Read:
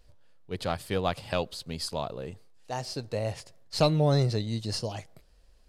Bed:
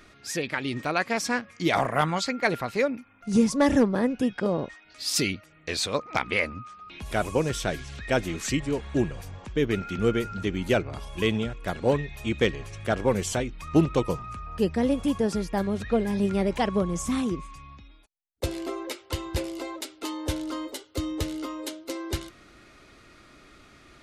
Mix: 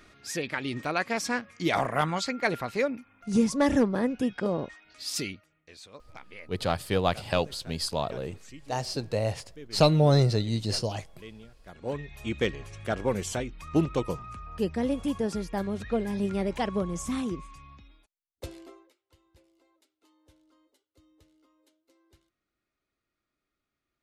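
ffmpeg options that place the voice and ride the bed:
-filter_complex "[0:a]adelay=6000,volume=1.41[s0];[1:a]volume=5.31,afade=t=out:st=4.8:d=0.85:silence=0.11885,afade=t=in:st=11.65:d=0.62:silence=0.141254,afade=t=out:st=17.88:d=1.03:silence=0.0354813[s1];[s0][s1]amix=inputs=2:normalize=0"

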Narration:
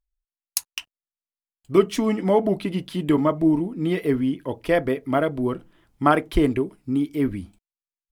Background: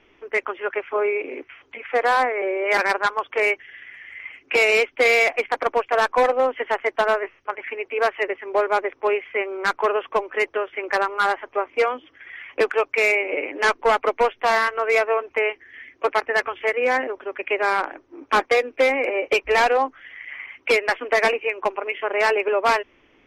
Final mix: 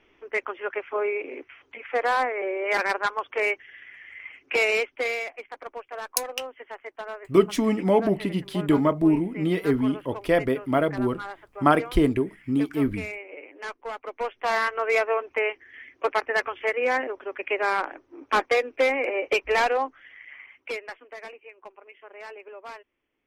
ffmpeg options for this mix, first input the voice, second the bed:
-filter_complex "[0:a]adelay=5600,volume=0.891[s0];[1:a]volume=2.66,afade=t=out:st=4.63:d=0.67:silence=0.251189,afade=t=in:st=14.05:d=0.63:silence=0.223872,afade=t=out:st=19.46:d=1.61:silence=0.11885[s1];[s0][s1]amix=inputs=2:normalize=0"

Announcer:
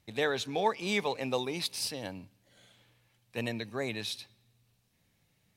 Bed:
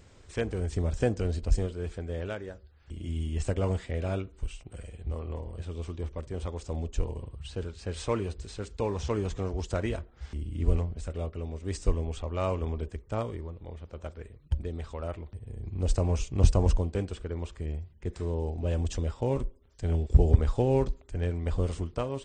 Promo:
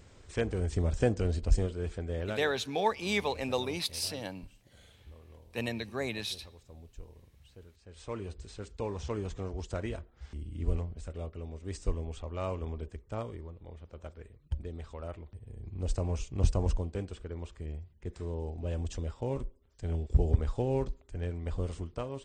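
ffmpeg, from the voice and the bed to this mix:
-filter_complex "[0:a]adelay=2200,volume=1[s0];[1:a]volume=3.98,afade=t=out:st=2.27:d=0.47:silence=0.133352,afade=t=in:st=7.89:d=0.47:silence=0.237137[s1];[s0][s1]amix=inputs=2:normalize=0"

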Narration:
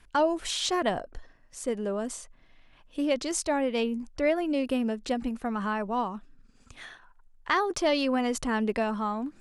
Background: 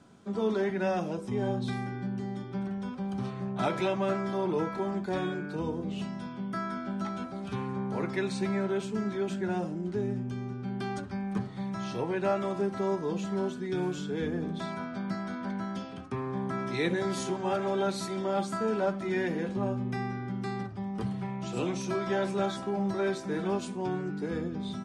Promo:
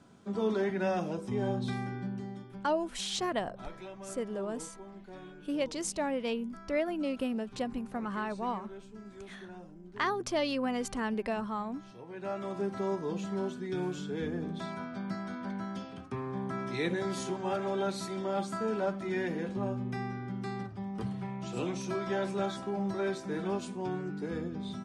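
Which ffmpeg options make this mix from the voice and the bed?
-filter_complex "[0:a]adelay=2500,volume=0.531[s0];[1:a]volume=3.98,afade=t=out:st=1.94:d=0.77:silence=0.177828,afade=t=in:st=12.05:d=0.64:silence=0.211349[s1];[s0][s1]amix=inputs=2:normalize=0"

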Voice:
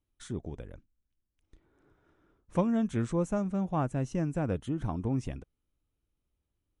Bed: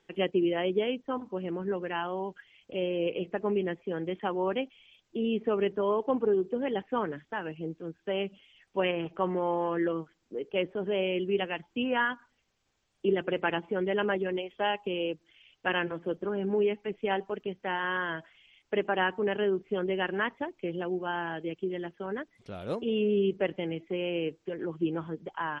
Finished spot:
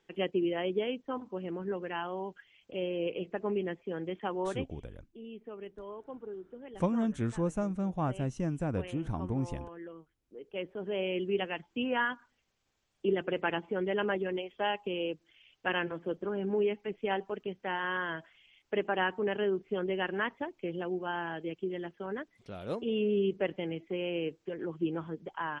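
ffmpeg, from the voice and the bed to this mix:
-filter_complex "[0:a]adelay=4250,volume=0.794[s0];[1:a]volume=3.35,afade=t=out:st=4.4:d=0.49:silence=0.223872,afade=t=in:st=10.19:d=1.02:silence=0.199526[s1];[s0][s1]amix=inputs=2:normalize=0"

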